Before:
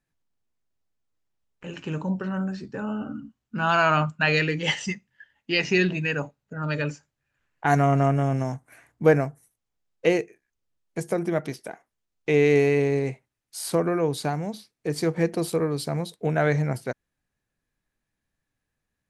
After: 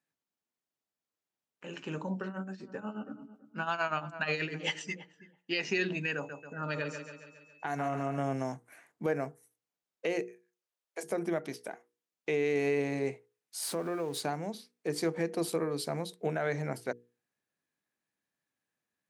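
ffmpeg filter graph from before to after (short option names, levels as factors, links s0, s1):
-filter_complex "[0:a]asettb=1/sr,asplit=3[s0][s1][s2];[s0]atrim=end=2.274[s3];[s1]atrim=start=2.27:end=5.55,asetpts=PTS-STARTPTS,afade=t=in:d=0.004:c=qsin,afade=t=out:st=3.276:d=0.004:c=qsin,tremolo=f=8.3:d=0.8,asplit=2[s4][s5];[s5]adelay=328,lowpass=f=980:p=1,volume=0.188,asplit=2[s6][s7];[s7]adelay=328,lowpass=f=980:p=1,volume=0.15[s8];[s4][s6][s8]amix=inputs=3:normalize=0,atrim=end_sample=144648[s9];[s2]atrim=start=5.546[s10];[s3][s9]acrossfade=d=0.004:c1=hsin:c2=qsin[s11];[s11][s10]acrossfade=d=0.004:c1=qsin:c2=hsin,asettb=1/sr,asplit=3[s12][s13][s14];[s12]atrim=end=6.154[s15];[s13]atrim=start=6.15:end=8.18,asetpts=PTS-STARTPTS,afade=t=in:d=0.004:c=qsin,afade=t=out:st=2.026:d=0.004:c=qsin,aecho=1:1:138|276|414|552|690|828:0.316|0.171|0.0922|0.0498|0.0269|0.0145,atrim=end_sample=89523,acompressor=threshold=0.0708:ratio=6:attack=3.2:release=140:knee=1:detection=peak,aeval=exprs='val(0)+0.00178*sin(2*PI*2600*n/s)':c=same[s16];[s14]atrim=start=8.176[s17];[s15][s16]acrossfade=d=0.004:c1=hsin:c2=qsin[s18];[s18][s17]acrossfade=d=0.004:c1=qsin:c2=hsin,asettb=1/sr,asplit=3[s19][s20][s21];[s19]atrim=end=10.224[s22];[s20]atrim=start=10.22:end=11.03,asetpts=PTS-STARTPTS,afade=t=in:d=0.004:c=qsin,afade=t=out:st=0.806:d=0.004:c=qsin,highpass=f=430:w=0.5412,highpass=f=430:w=1.3066,asplit=2[s23][s24];[s24]adelay=36,volume=0.224[s25];[s23][s25]amix=inputs=2:normalize=0,atrim=end_sample=35721[s26];[s21]atrim=start=11.026[s27];[s22][s26]acrossfade=d=0.004:c1=hsin:c2=qsin[s28];[s28][s27]acrossfade=d=0.004:c1=qsin:c2=hsin,asettb=1/sr,asplit=3[s29][s30][s31];[s29]atrim=end=13.624[s32];[s30]atrim=start=13.62:end=14.21,asetpts=PTS-STARTPTS,afade=t=in:d=0.004:c=qsin,afade=t=out:st=0.586:d=0.004:c=qsin,aeval=exprs='val(0)+0.5*0.0133*sgn(val(0))':c=same,acompressor=threshold=0.0398:ratio=2.5:attack=3.2:release=140:knee=1:detection=peak[s33];[s31]atrim=start=14.206[s34];[s32][s33]acrossfade=d=0.004:c1=hsin:c2=qsin[s35];[s35][s34]acrossfade=d=0.004:c1=qsin:c2=hsin,highpass=210,bandreject=f=60:t=h:w=6,bandreject=f=120:t=h:w=6,bandreject=f=180:t=h:w=6,bandreject=f=240:t=h:w=6,bandreject=f=300:t=h:w=6,bandreject=f=360:t=h:w=6,bandreject=f=420:t=h:w=6,bandreject=f=480:t=h:w=6,alimiter=limit=0.158:level=0:latency=1:release=189,volume=0.631"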